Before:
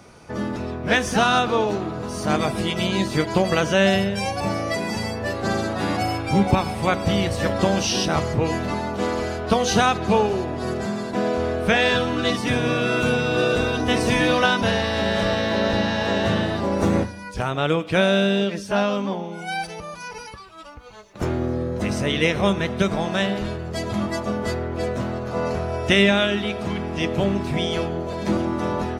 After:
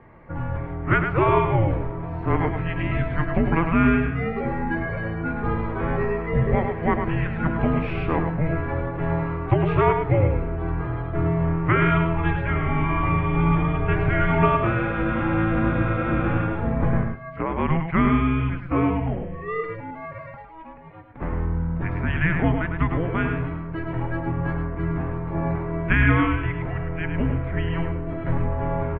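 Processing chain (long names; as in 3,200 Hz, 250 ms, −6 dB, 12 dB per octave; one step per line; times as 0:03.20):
on a send: single-tap delay 105 ms −6.5 dB
on the sum: single-sideband voice off tune −330 Hz 200–2,500 Hz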